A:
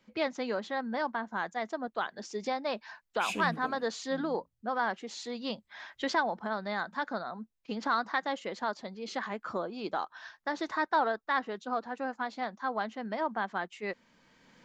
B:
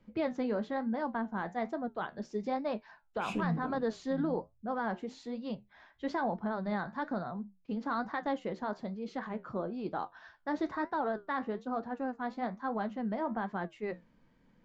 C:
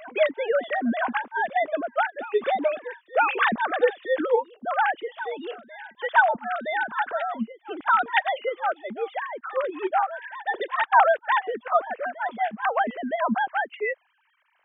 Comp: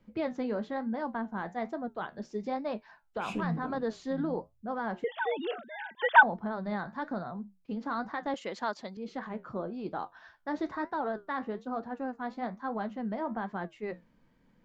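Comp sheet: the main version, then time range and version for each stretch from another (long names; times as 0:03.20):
B
0:05.04–0:06.23: punch in from C
0:08.34–0:08.97: punch in from A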